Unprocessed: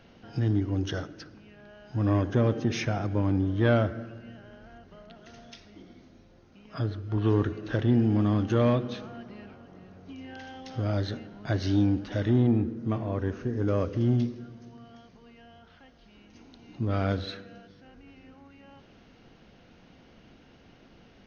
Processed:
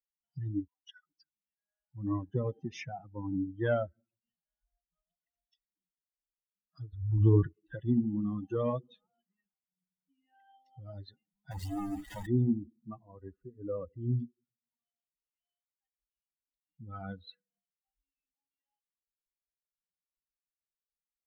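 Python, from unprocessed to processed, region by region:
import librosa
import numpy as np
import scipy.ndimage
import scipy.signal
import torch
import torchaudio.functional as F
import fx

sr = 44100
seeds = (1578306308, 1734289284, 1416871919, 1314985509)

y = fx.chain(x, sr, fx.highpass(hz=1200.0, slope=12),
    fx.high_shelf(hz=2500.0, db=-3.5), at=(0.67, 1.07))
y = fx.chain(y, sr, fx.lowpass(hz=4300.0, slope=24),
    fx.low_shelf(hz=180.0, db=6.5),
    fx.pre_swell(db_per_s=39.0), at=(6.93, 7.47))
y = fx.chain(y, sr, fx.high_shelf(hz=2200.0, db=-5.5),
    fx.quant_companded(bits=2), at=(11.51, 12.27))
y = fx.bin_expand(y, sr, power=3.0)
y = fx.high_shelf(y, sr, hz=2200.0, db=-10.0)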